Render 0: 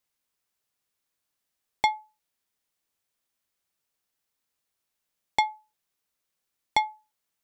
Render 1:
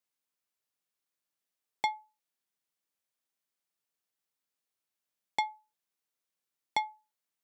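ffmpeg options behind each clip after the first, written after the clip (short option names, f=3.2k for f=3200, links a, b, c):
-af "highpass=130,volume=-7dB"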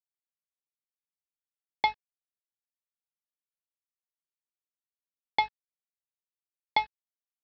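-af "aeval=exprs='val(0)+0.00126*(sin(2*PI*50*n/s)+sin(2*PI*2*50*n/s)/2+sin(2*PI*3*50*n/s)/3+sin(2*PI*4*50*n/s)/4+sin(2*PI*5*50*n/s)/5)':c=same,aresample=11025,aeval=exprs='sgn(val(0))*max(abs(val(0))-0.00891,0)':c=same,aresample=44100,volume=6dB"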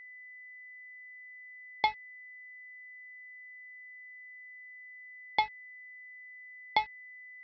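-af "aeval=exprs='val(0)+0.00562*sin(2*PI*2000*n/s)':c=same,volume=-2dB"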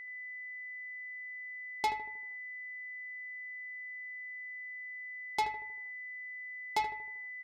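-filter_complex "[0:a]asoftclip=type=tanh:threshold=-29dB,asplit=2[a][b];[b]adelay=78,lowpass=f=1.4k:p=1,volume=-7.5dB,asplit=2[c][d];[d]adelay=78,lowpass=f=1.4k:p=1,volume=0.52,asplit=2[e][f];[f]adelay=78,lowpass=f=1.4k:p=1,volume=0.52,asplit=2[g][h];[h]adelay=78,lowpass=f=1.4k:p=1,volume=0.52,asplit=2[i][j];[j]adelay=78,lowpass=f=1.4k:p=1,volume=0.52,asplit=2[k][l];[l]adelay=78,lowpass=f=1.4k:p=1,volume=0.52[m];[c][e][g][i][k][m]amix=inputs=6:normalize=0[n];[a][n]amix=inputs=2:normalize=0,volume=4dB"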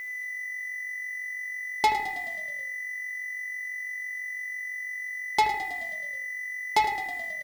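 -filter_complex "[0:a]acrusher=bits=9:mix=0:aa=0.000001,asplit=8[a][b][c][d][e][f][g][h];[b]adelay=107,afreqshift=-46,volume=-12dB[i];[c]adelay=214,afreqshift=-92,volume=-16.2dB[j];[d]adelay=321,afreqshift=-138,volume=-20.3dB[k];[e]adelay=428,afreqshift=-184,volume=-24.5dB[l];[f]adelay=535,afreqshift=-230,volume=-28.6dB[m];[g]adelay=642,afreqshift=-276,volume=-32.8dB[n];[h]adelay=749,afreqshift=-322,volume=-36.9dB[o];[a][i][j][k][l][m][n][o]amix=inputs=8:normalize=0,volume=9dB"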